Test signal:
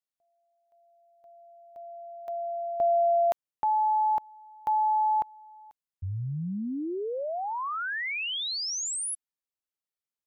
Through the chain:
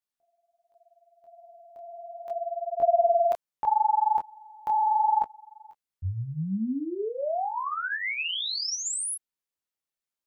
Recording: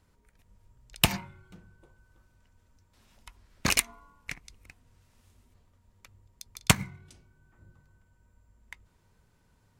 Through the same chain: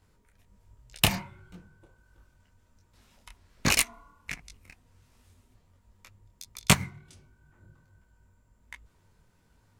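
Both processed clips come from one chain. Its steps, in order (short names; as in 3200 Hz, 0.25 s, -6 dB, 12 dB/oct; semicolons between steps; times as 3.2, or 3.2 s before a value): detuned doubles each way 47 cents; gain +5 dB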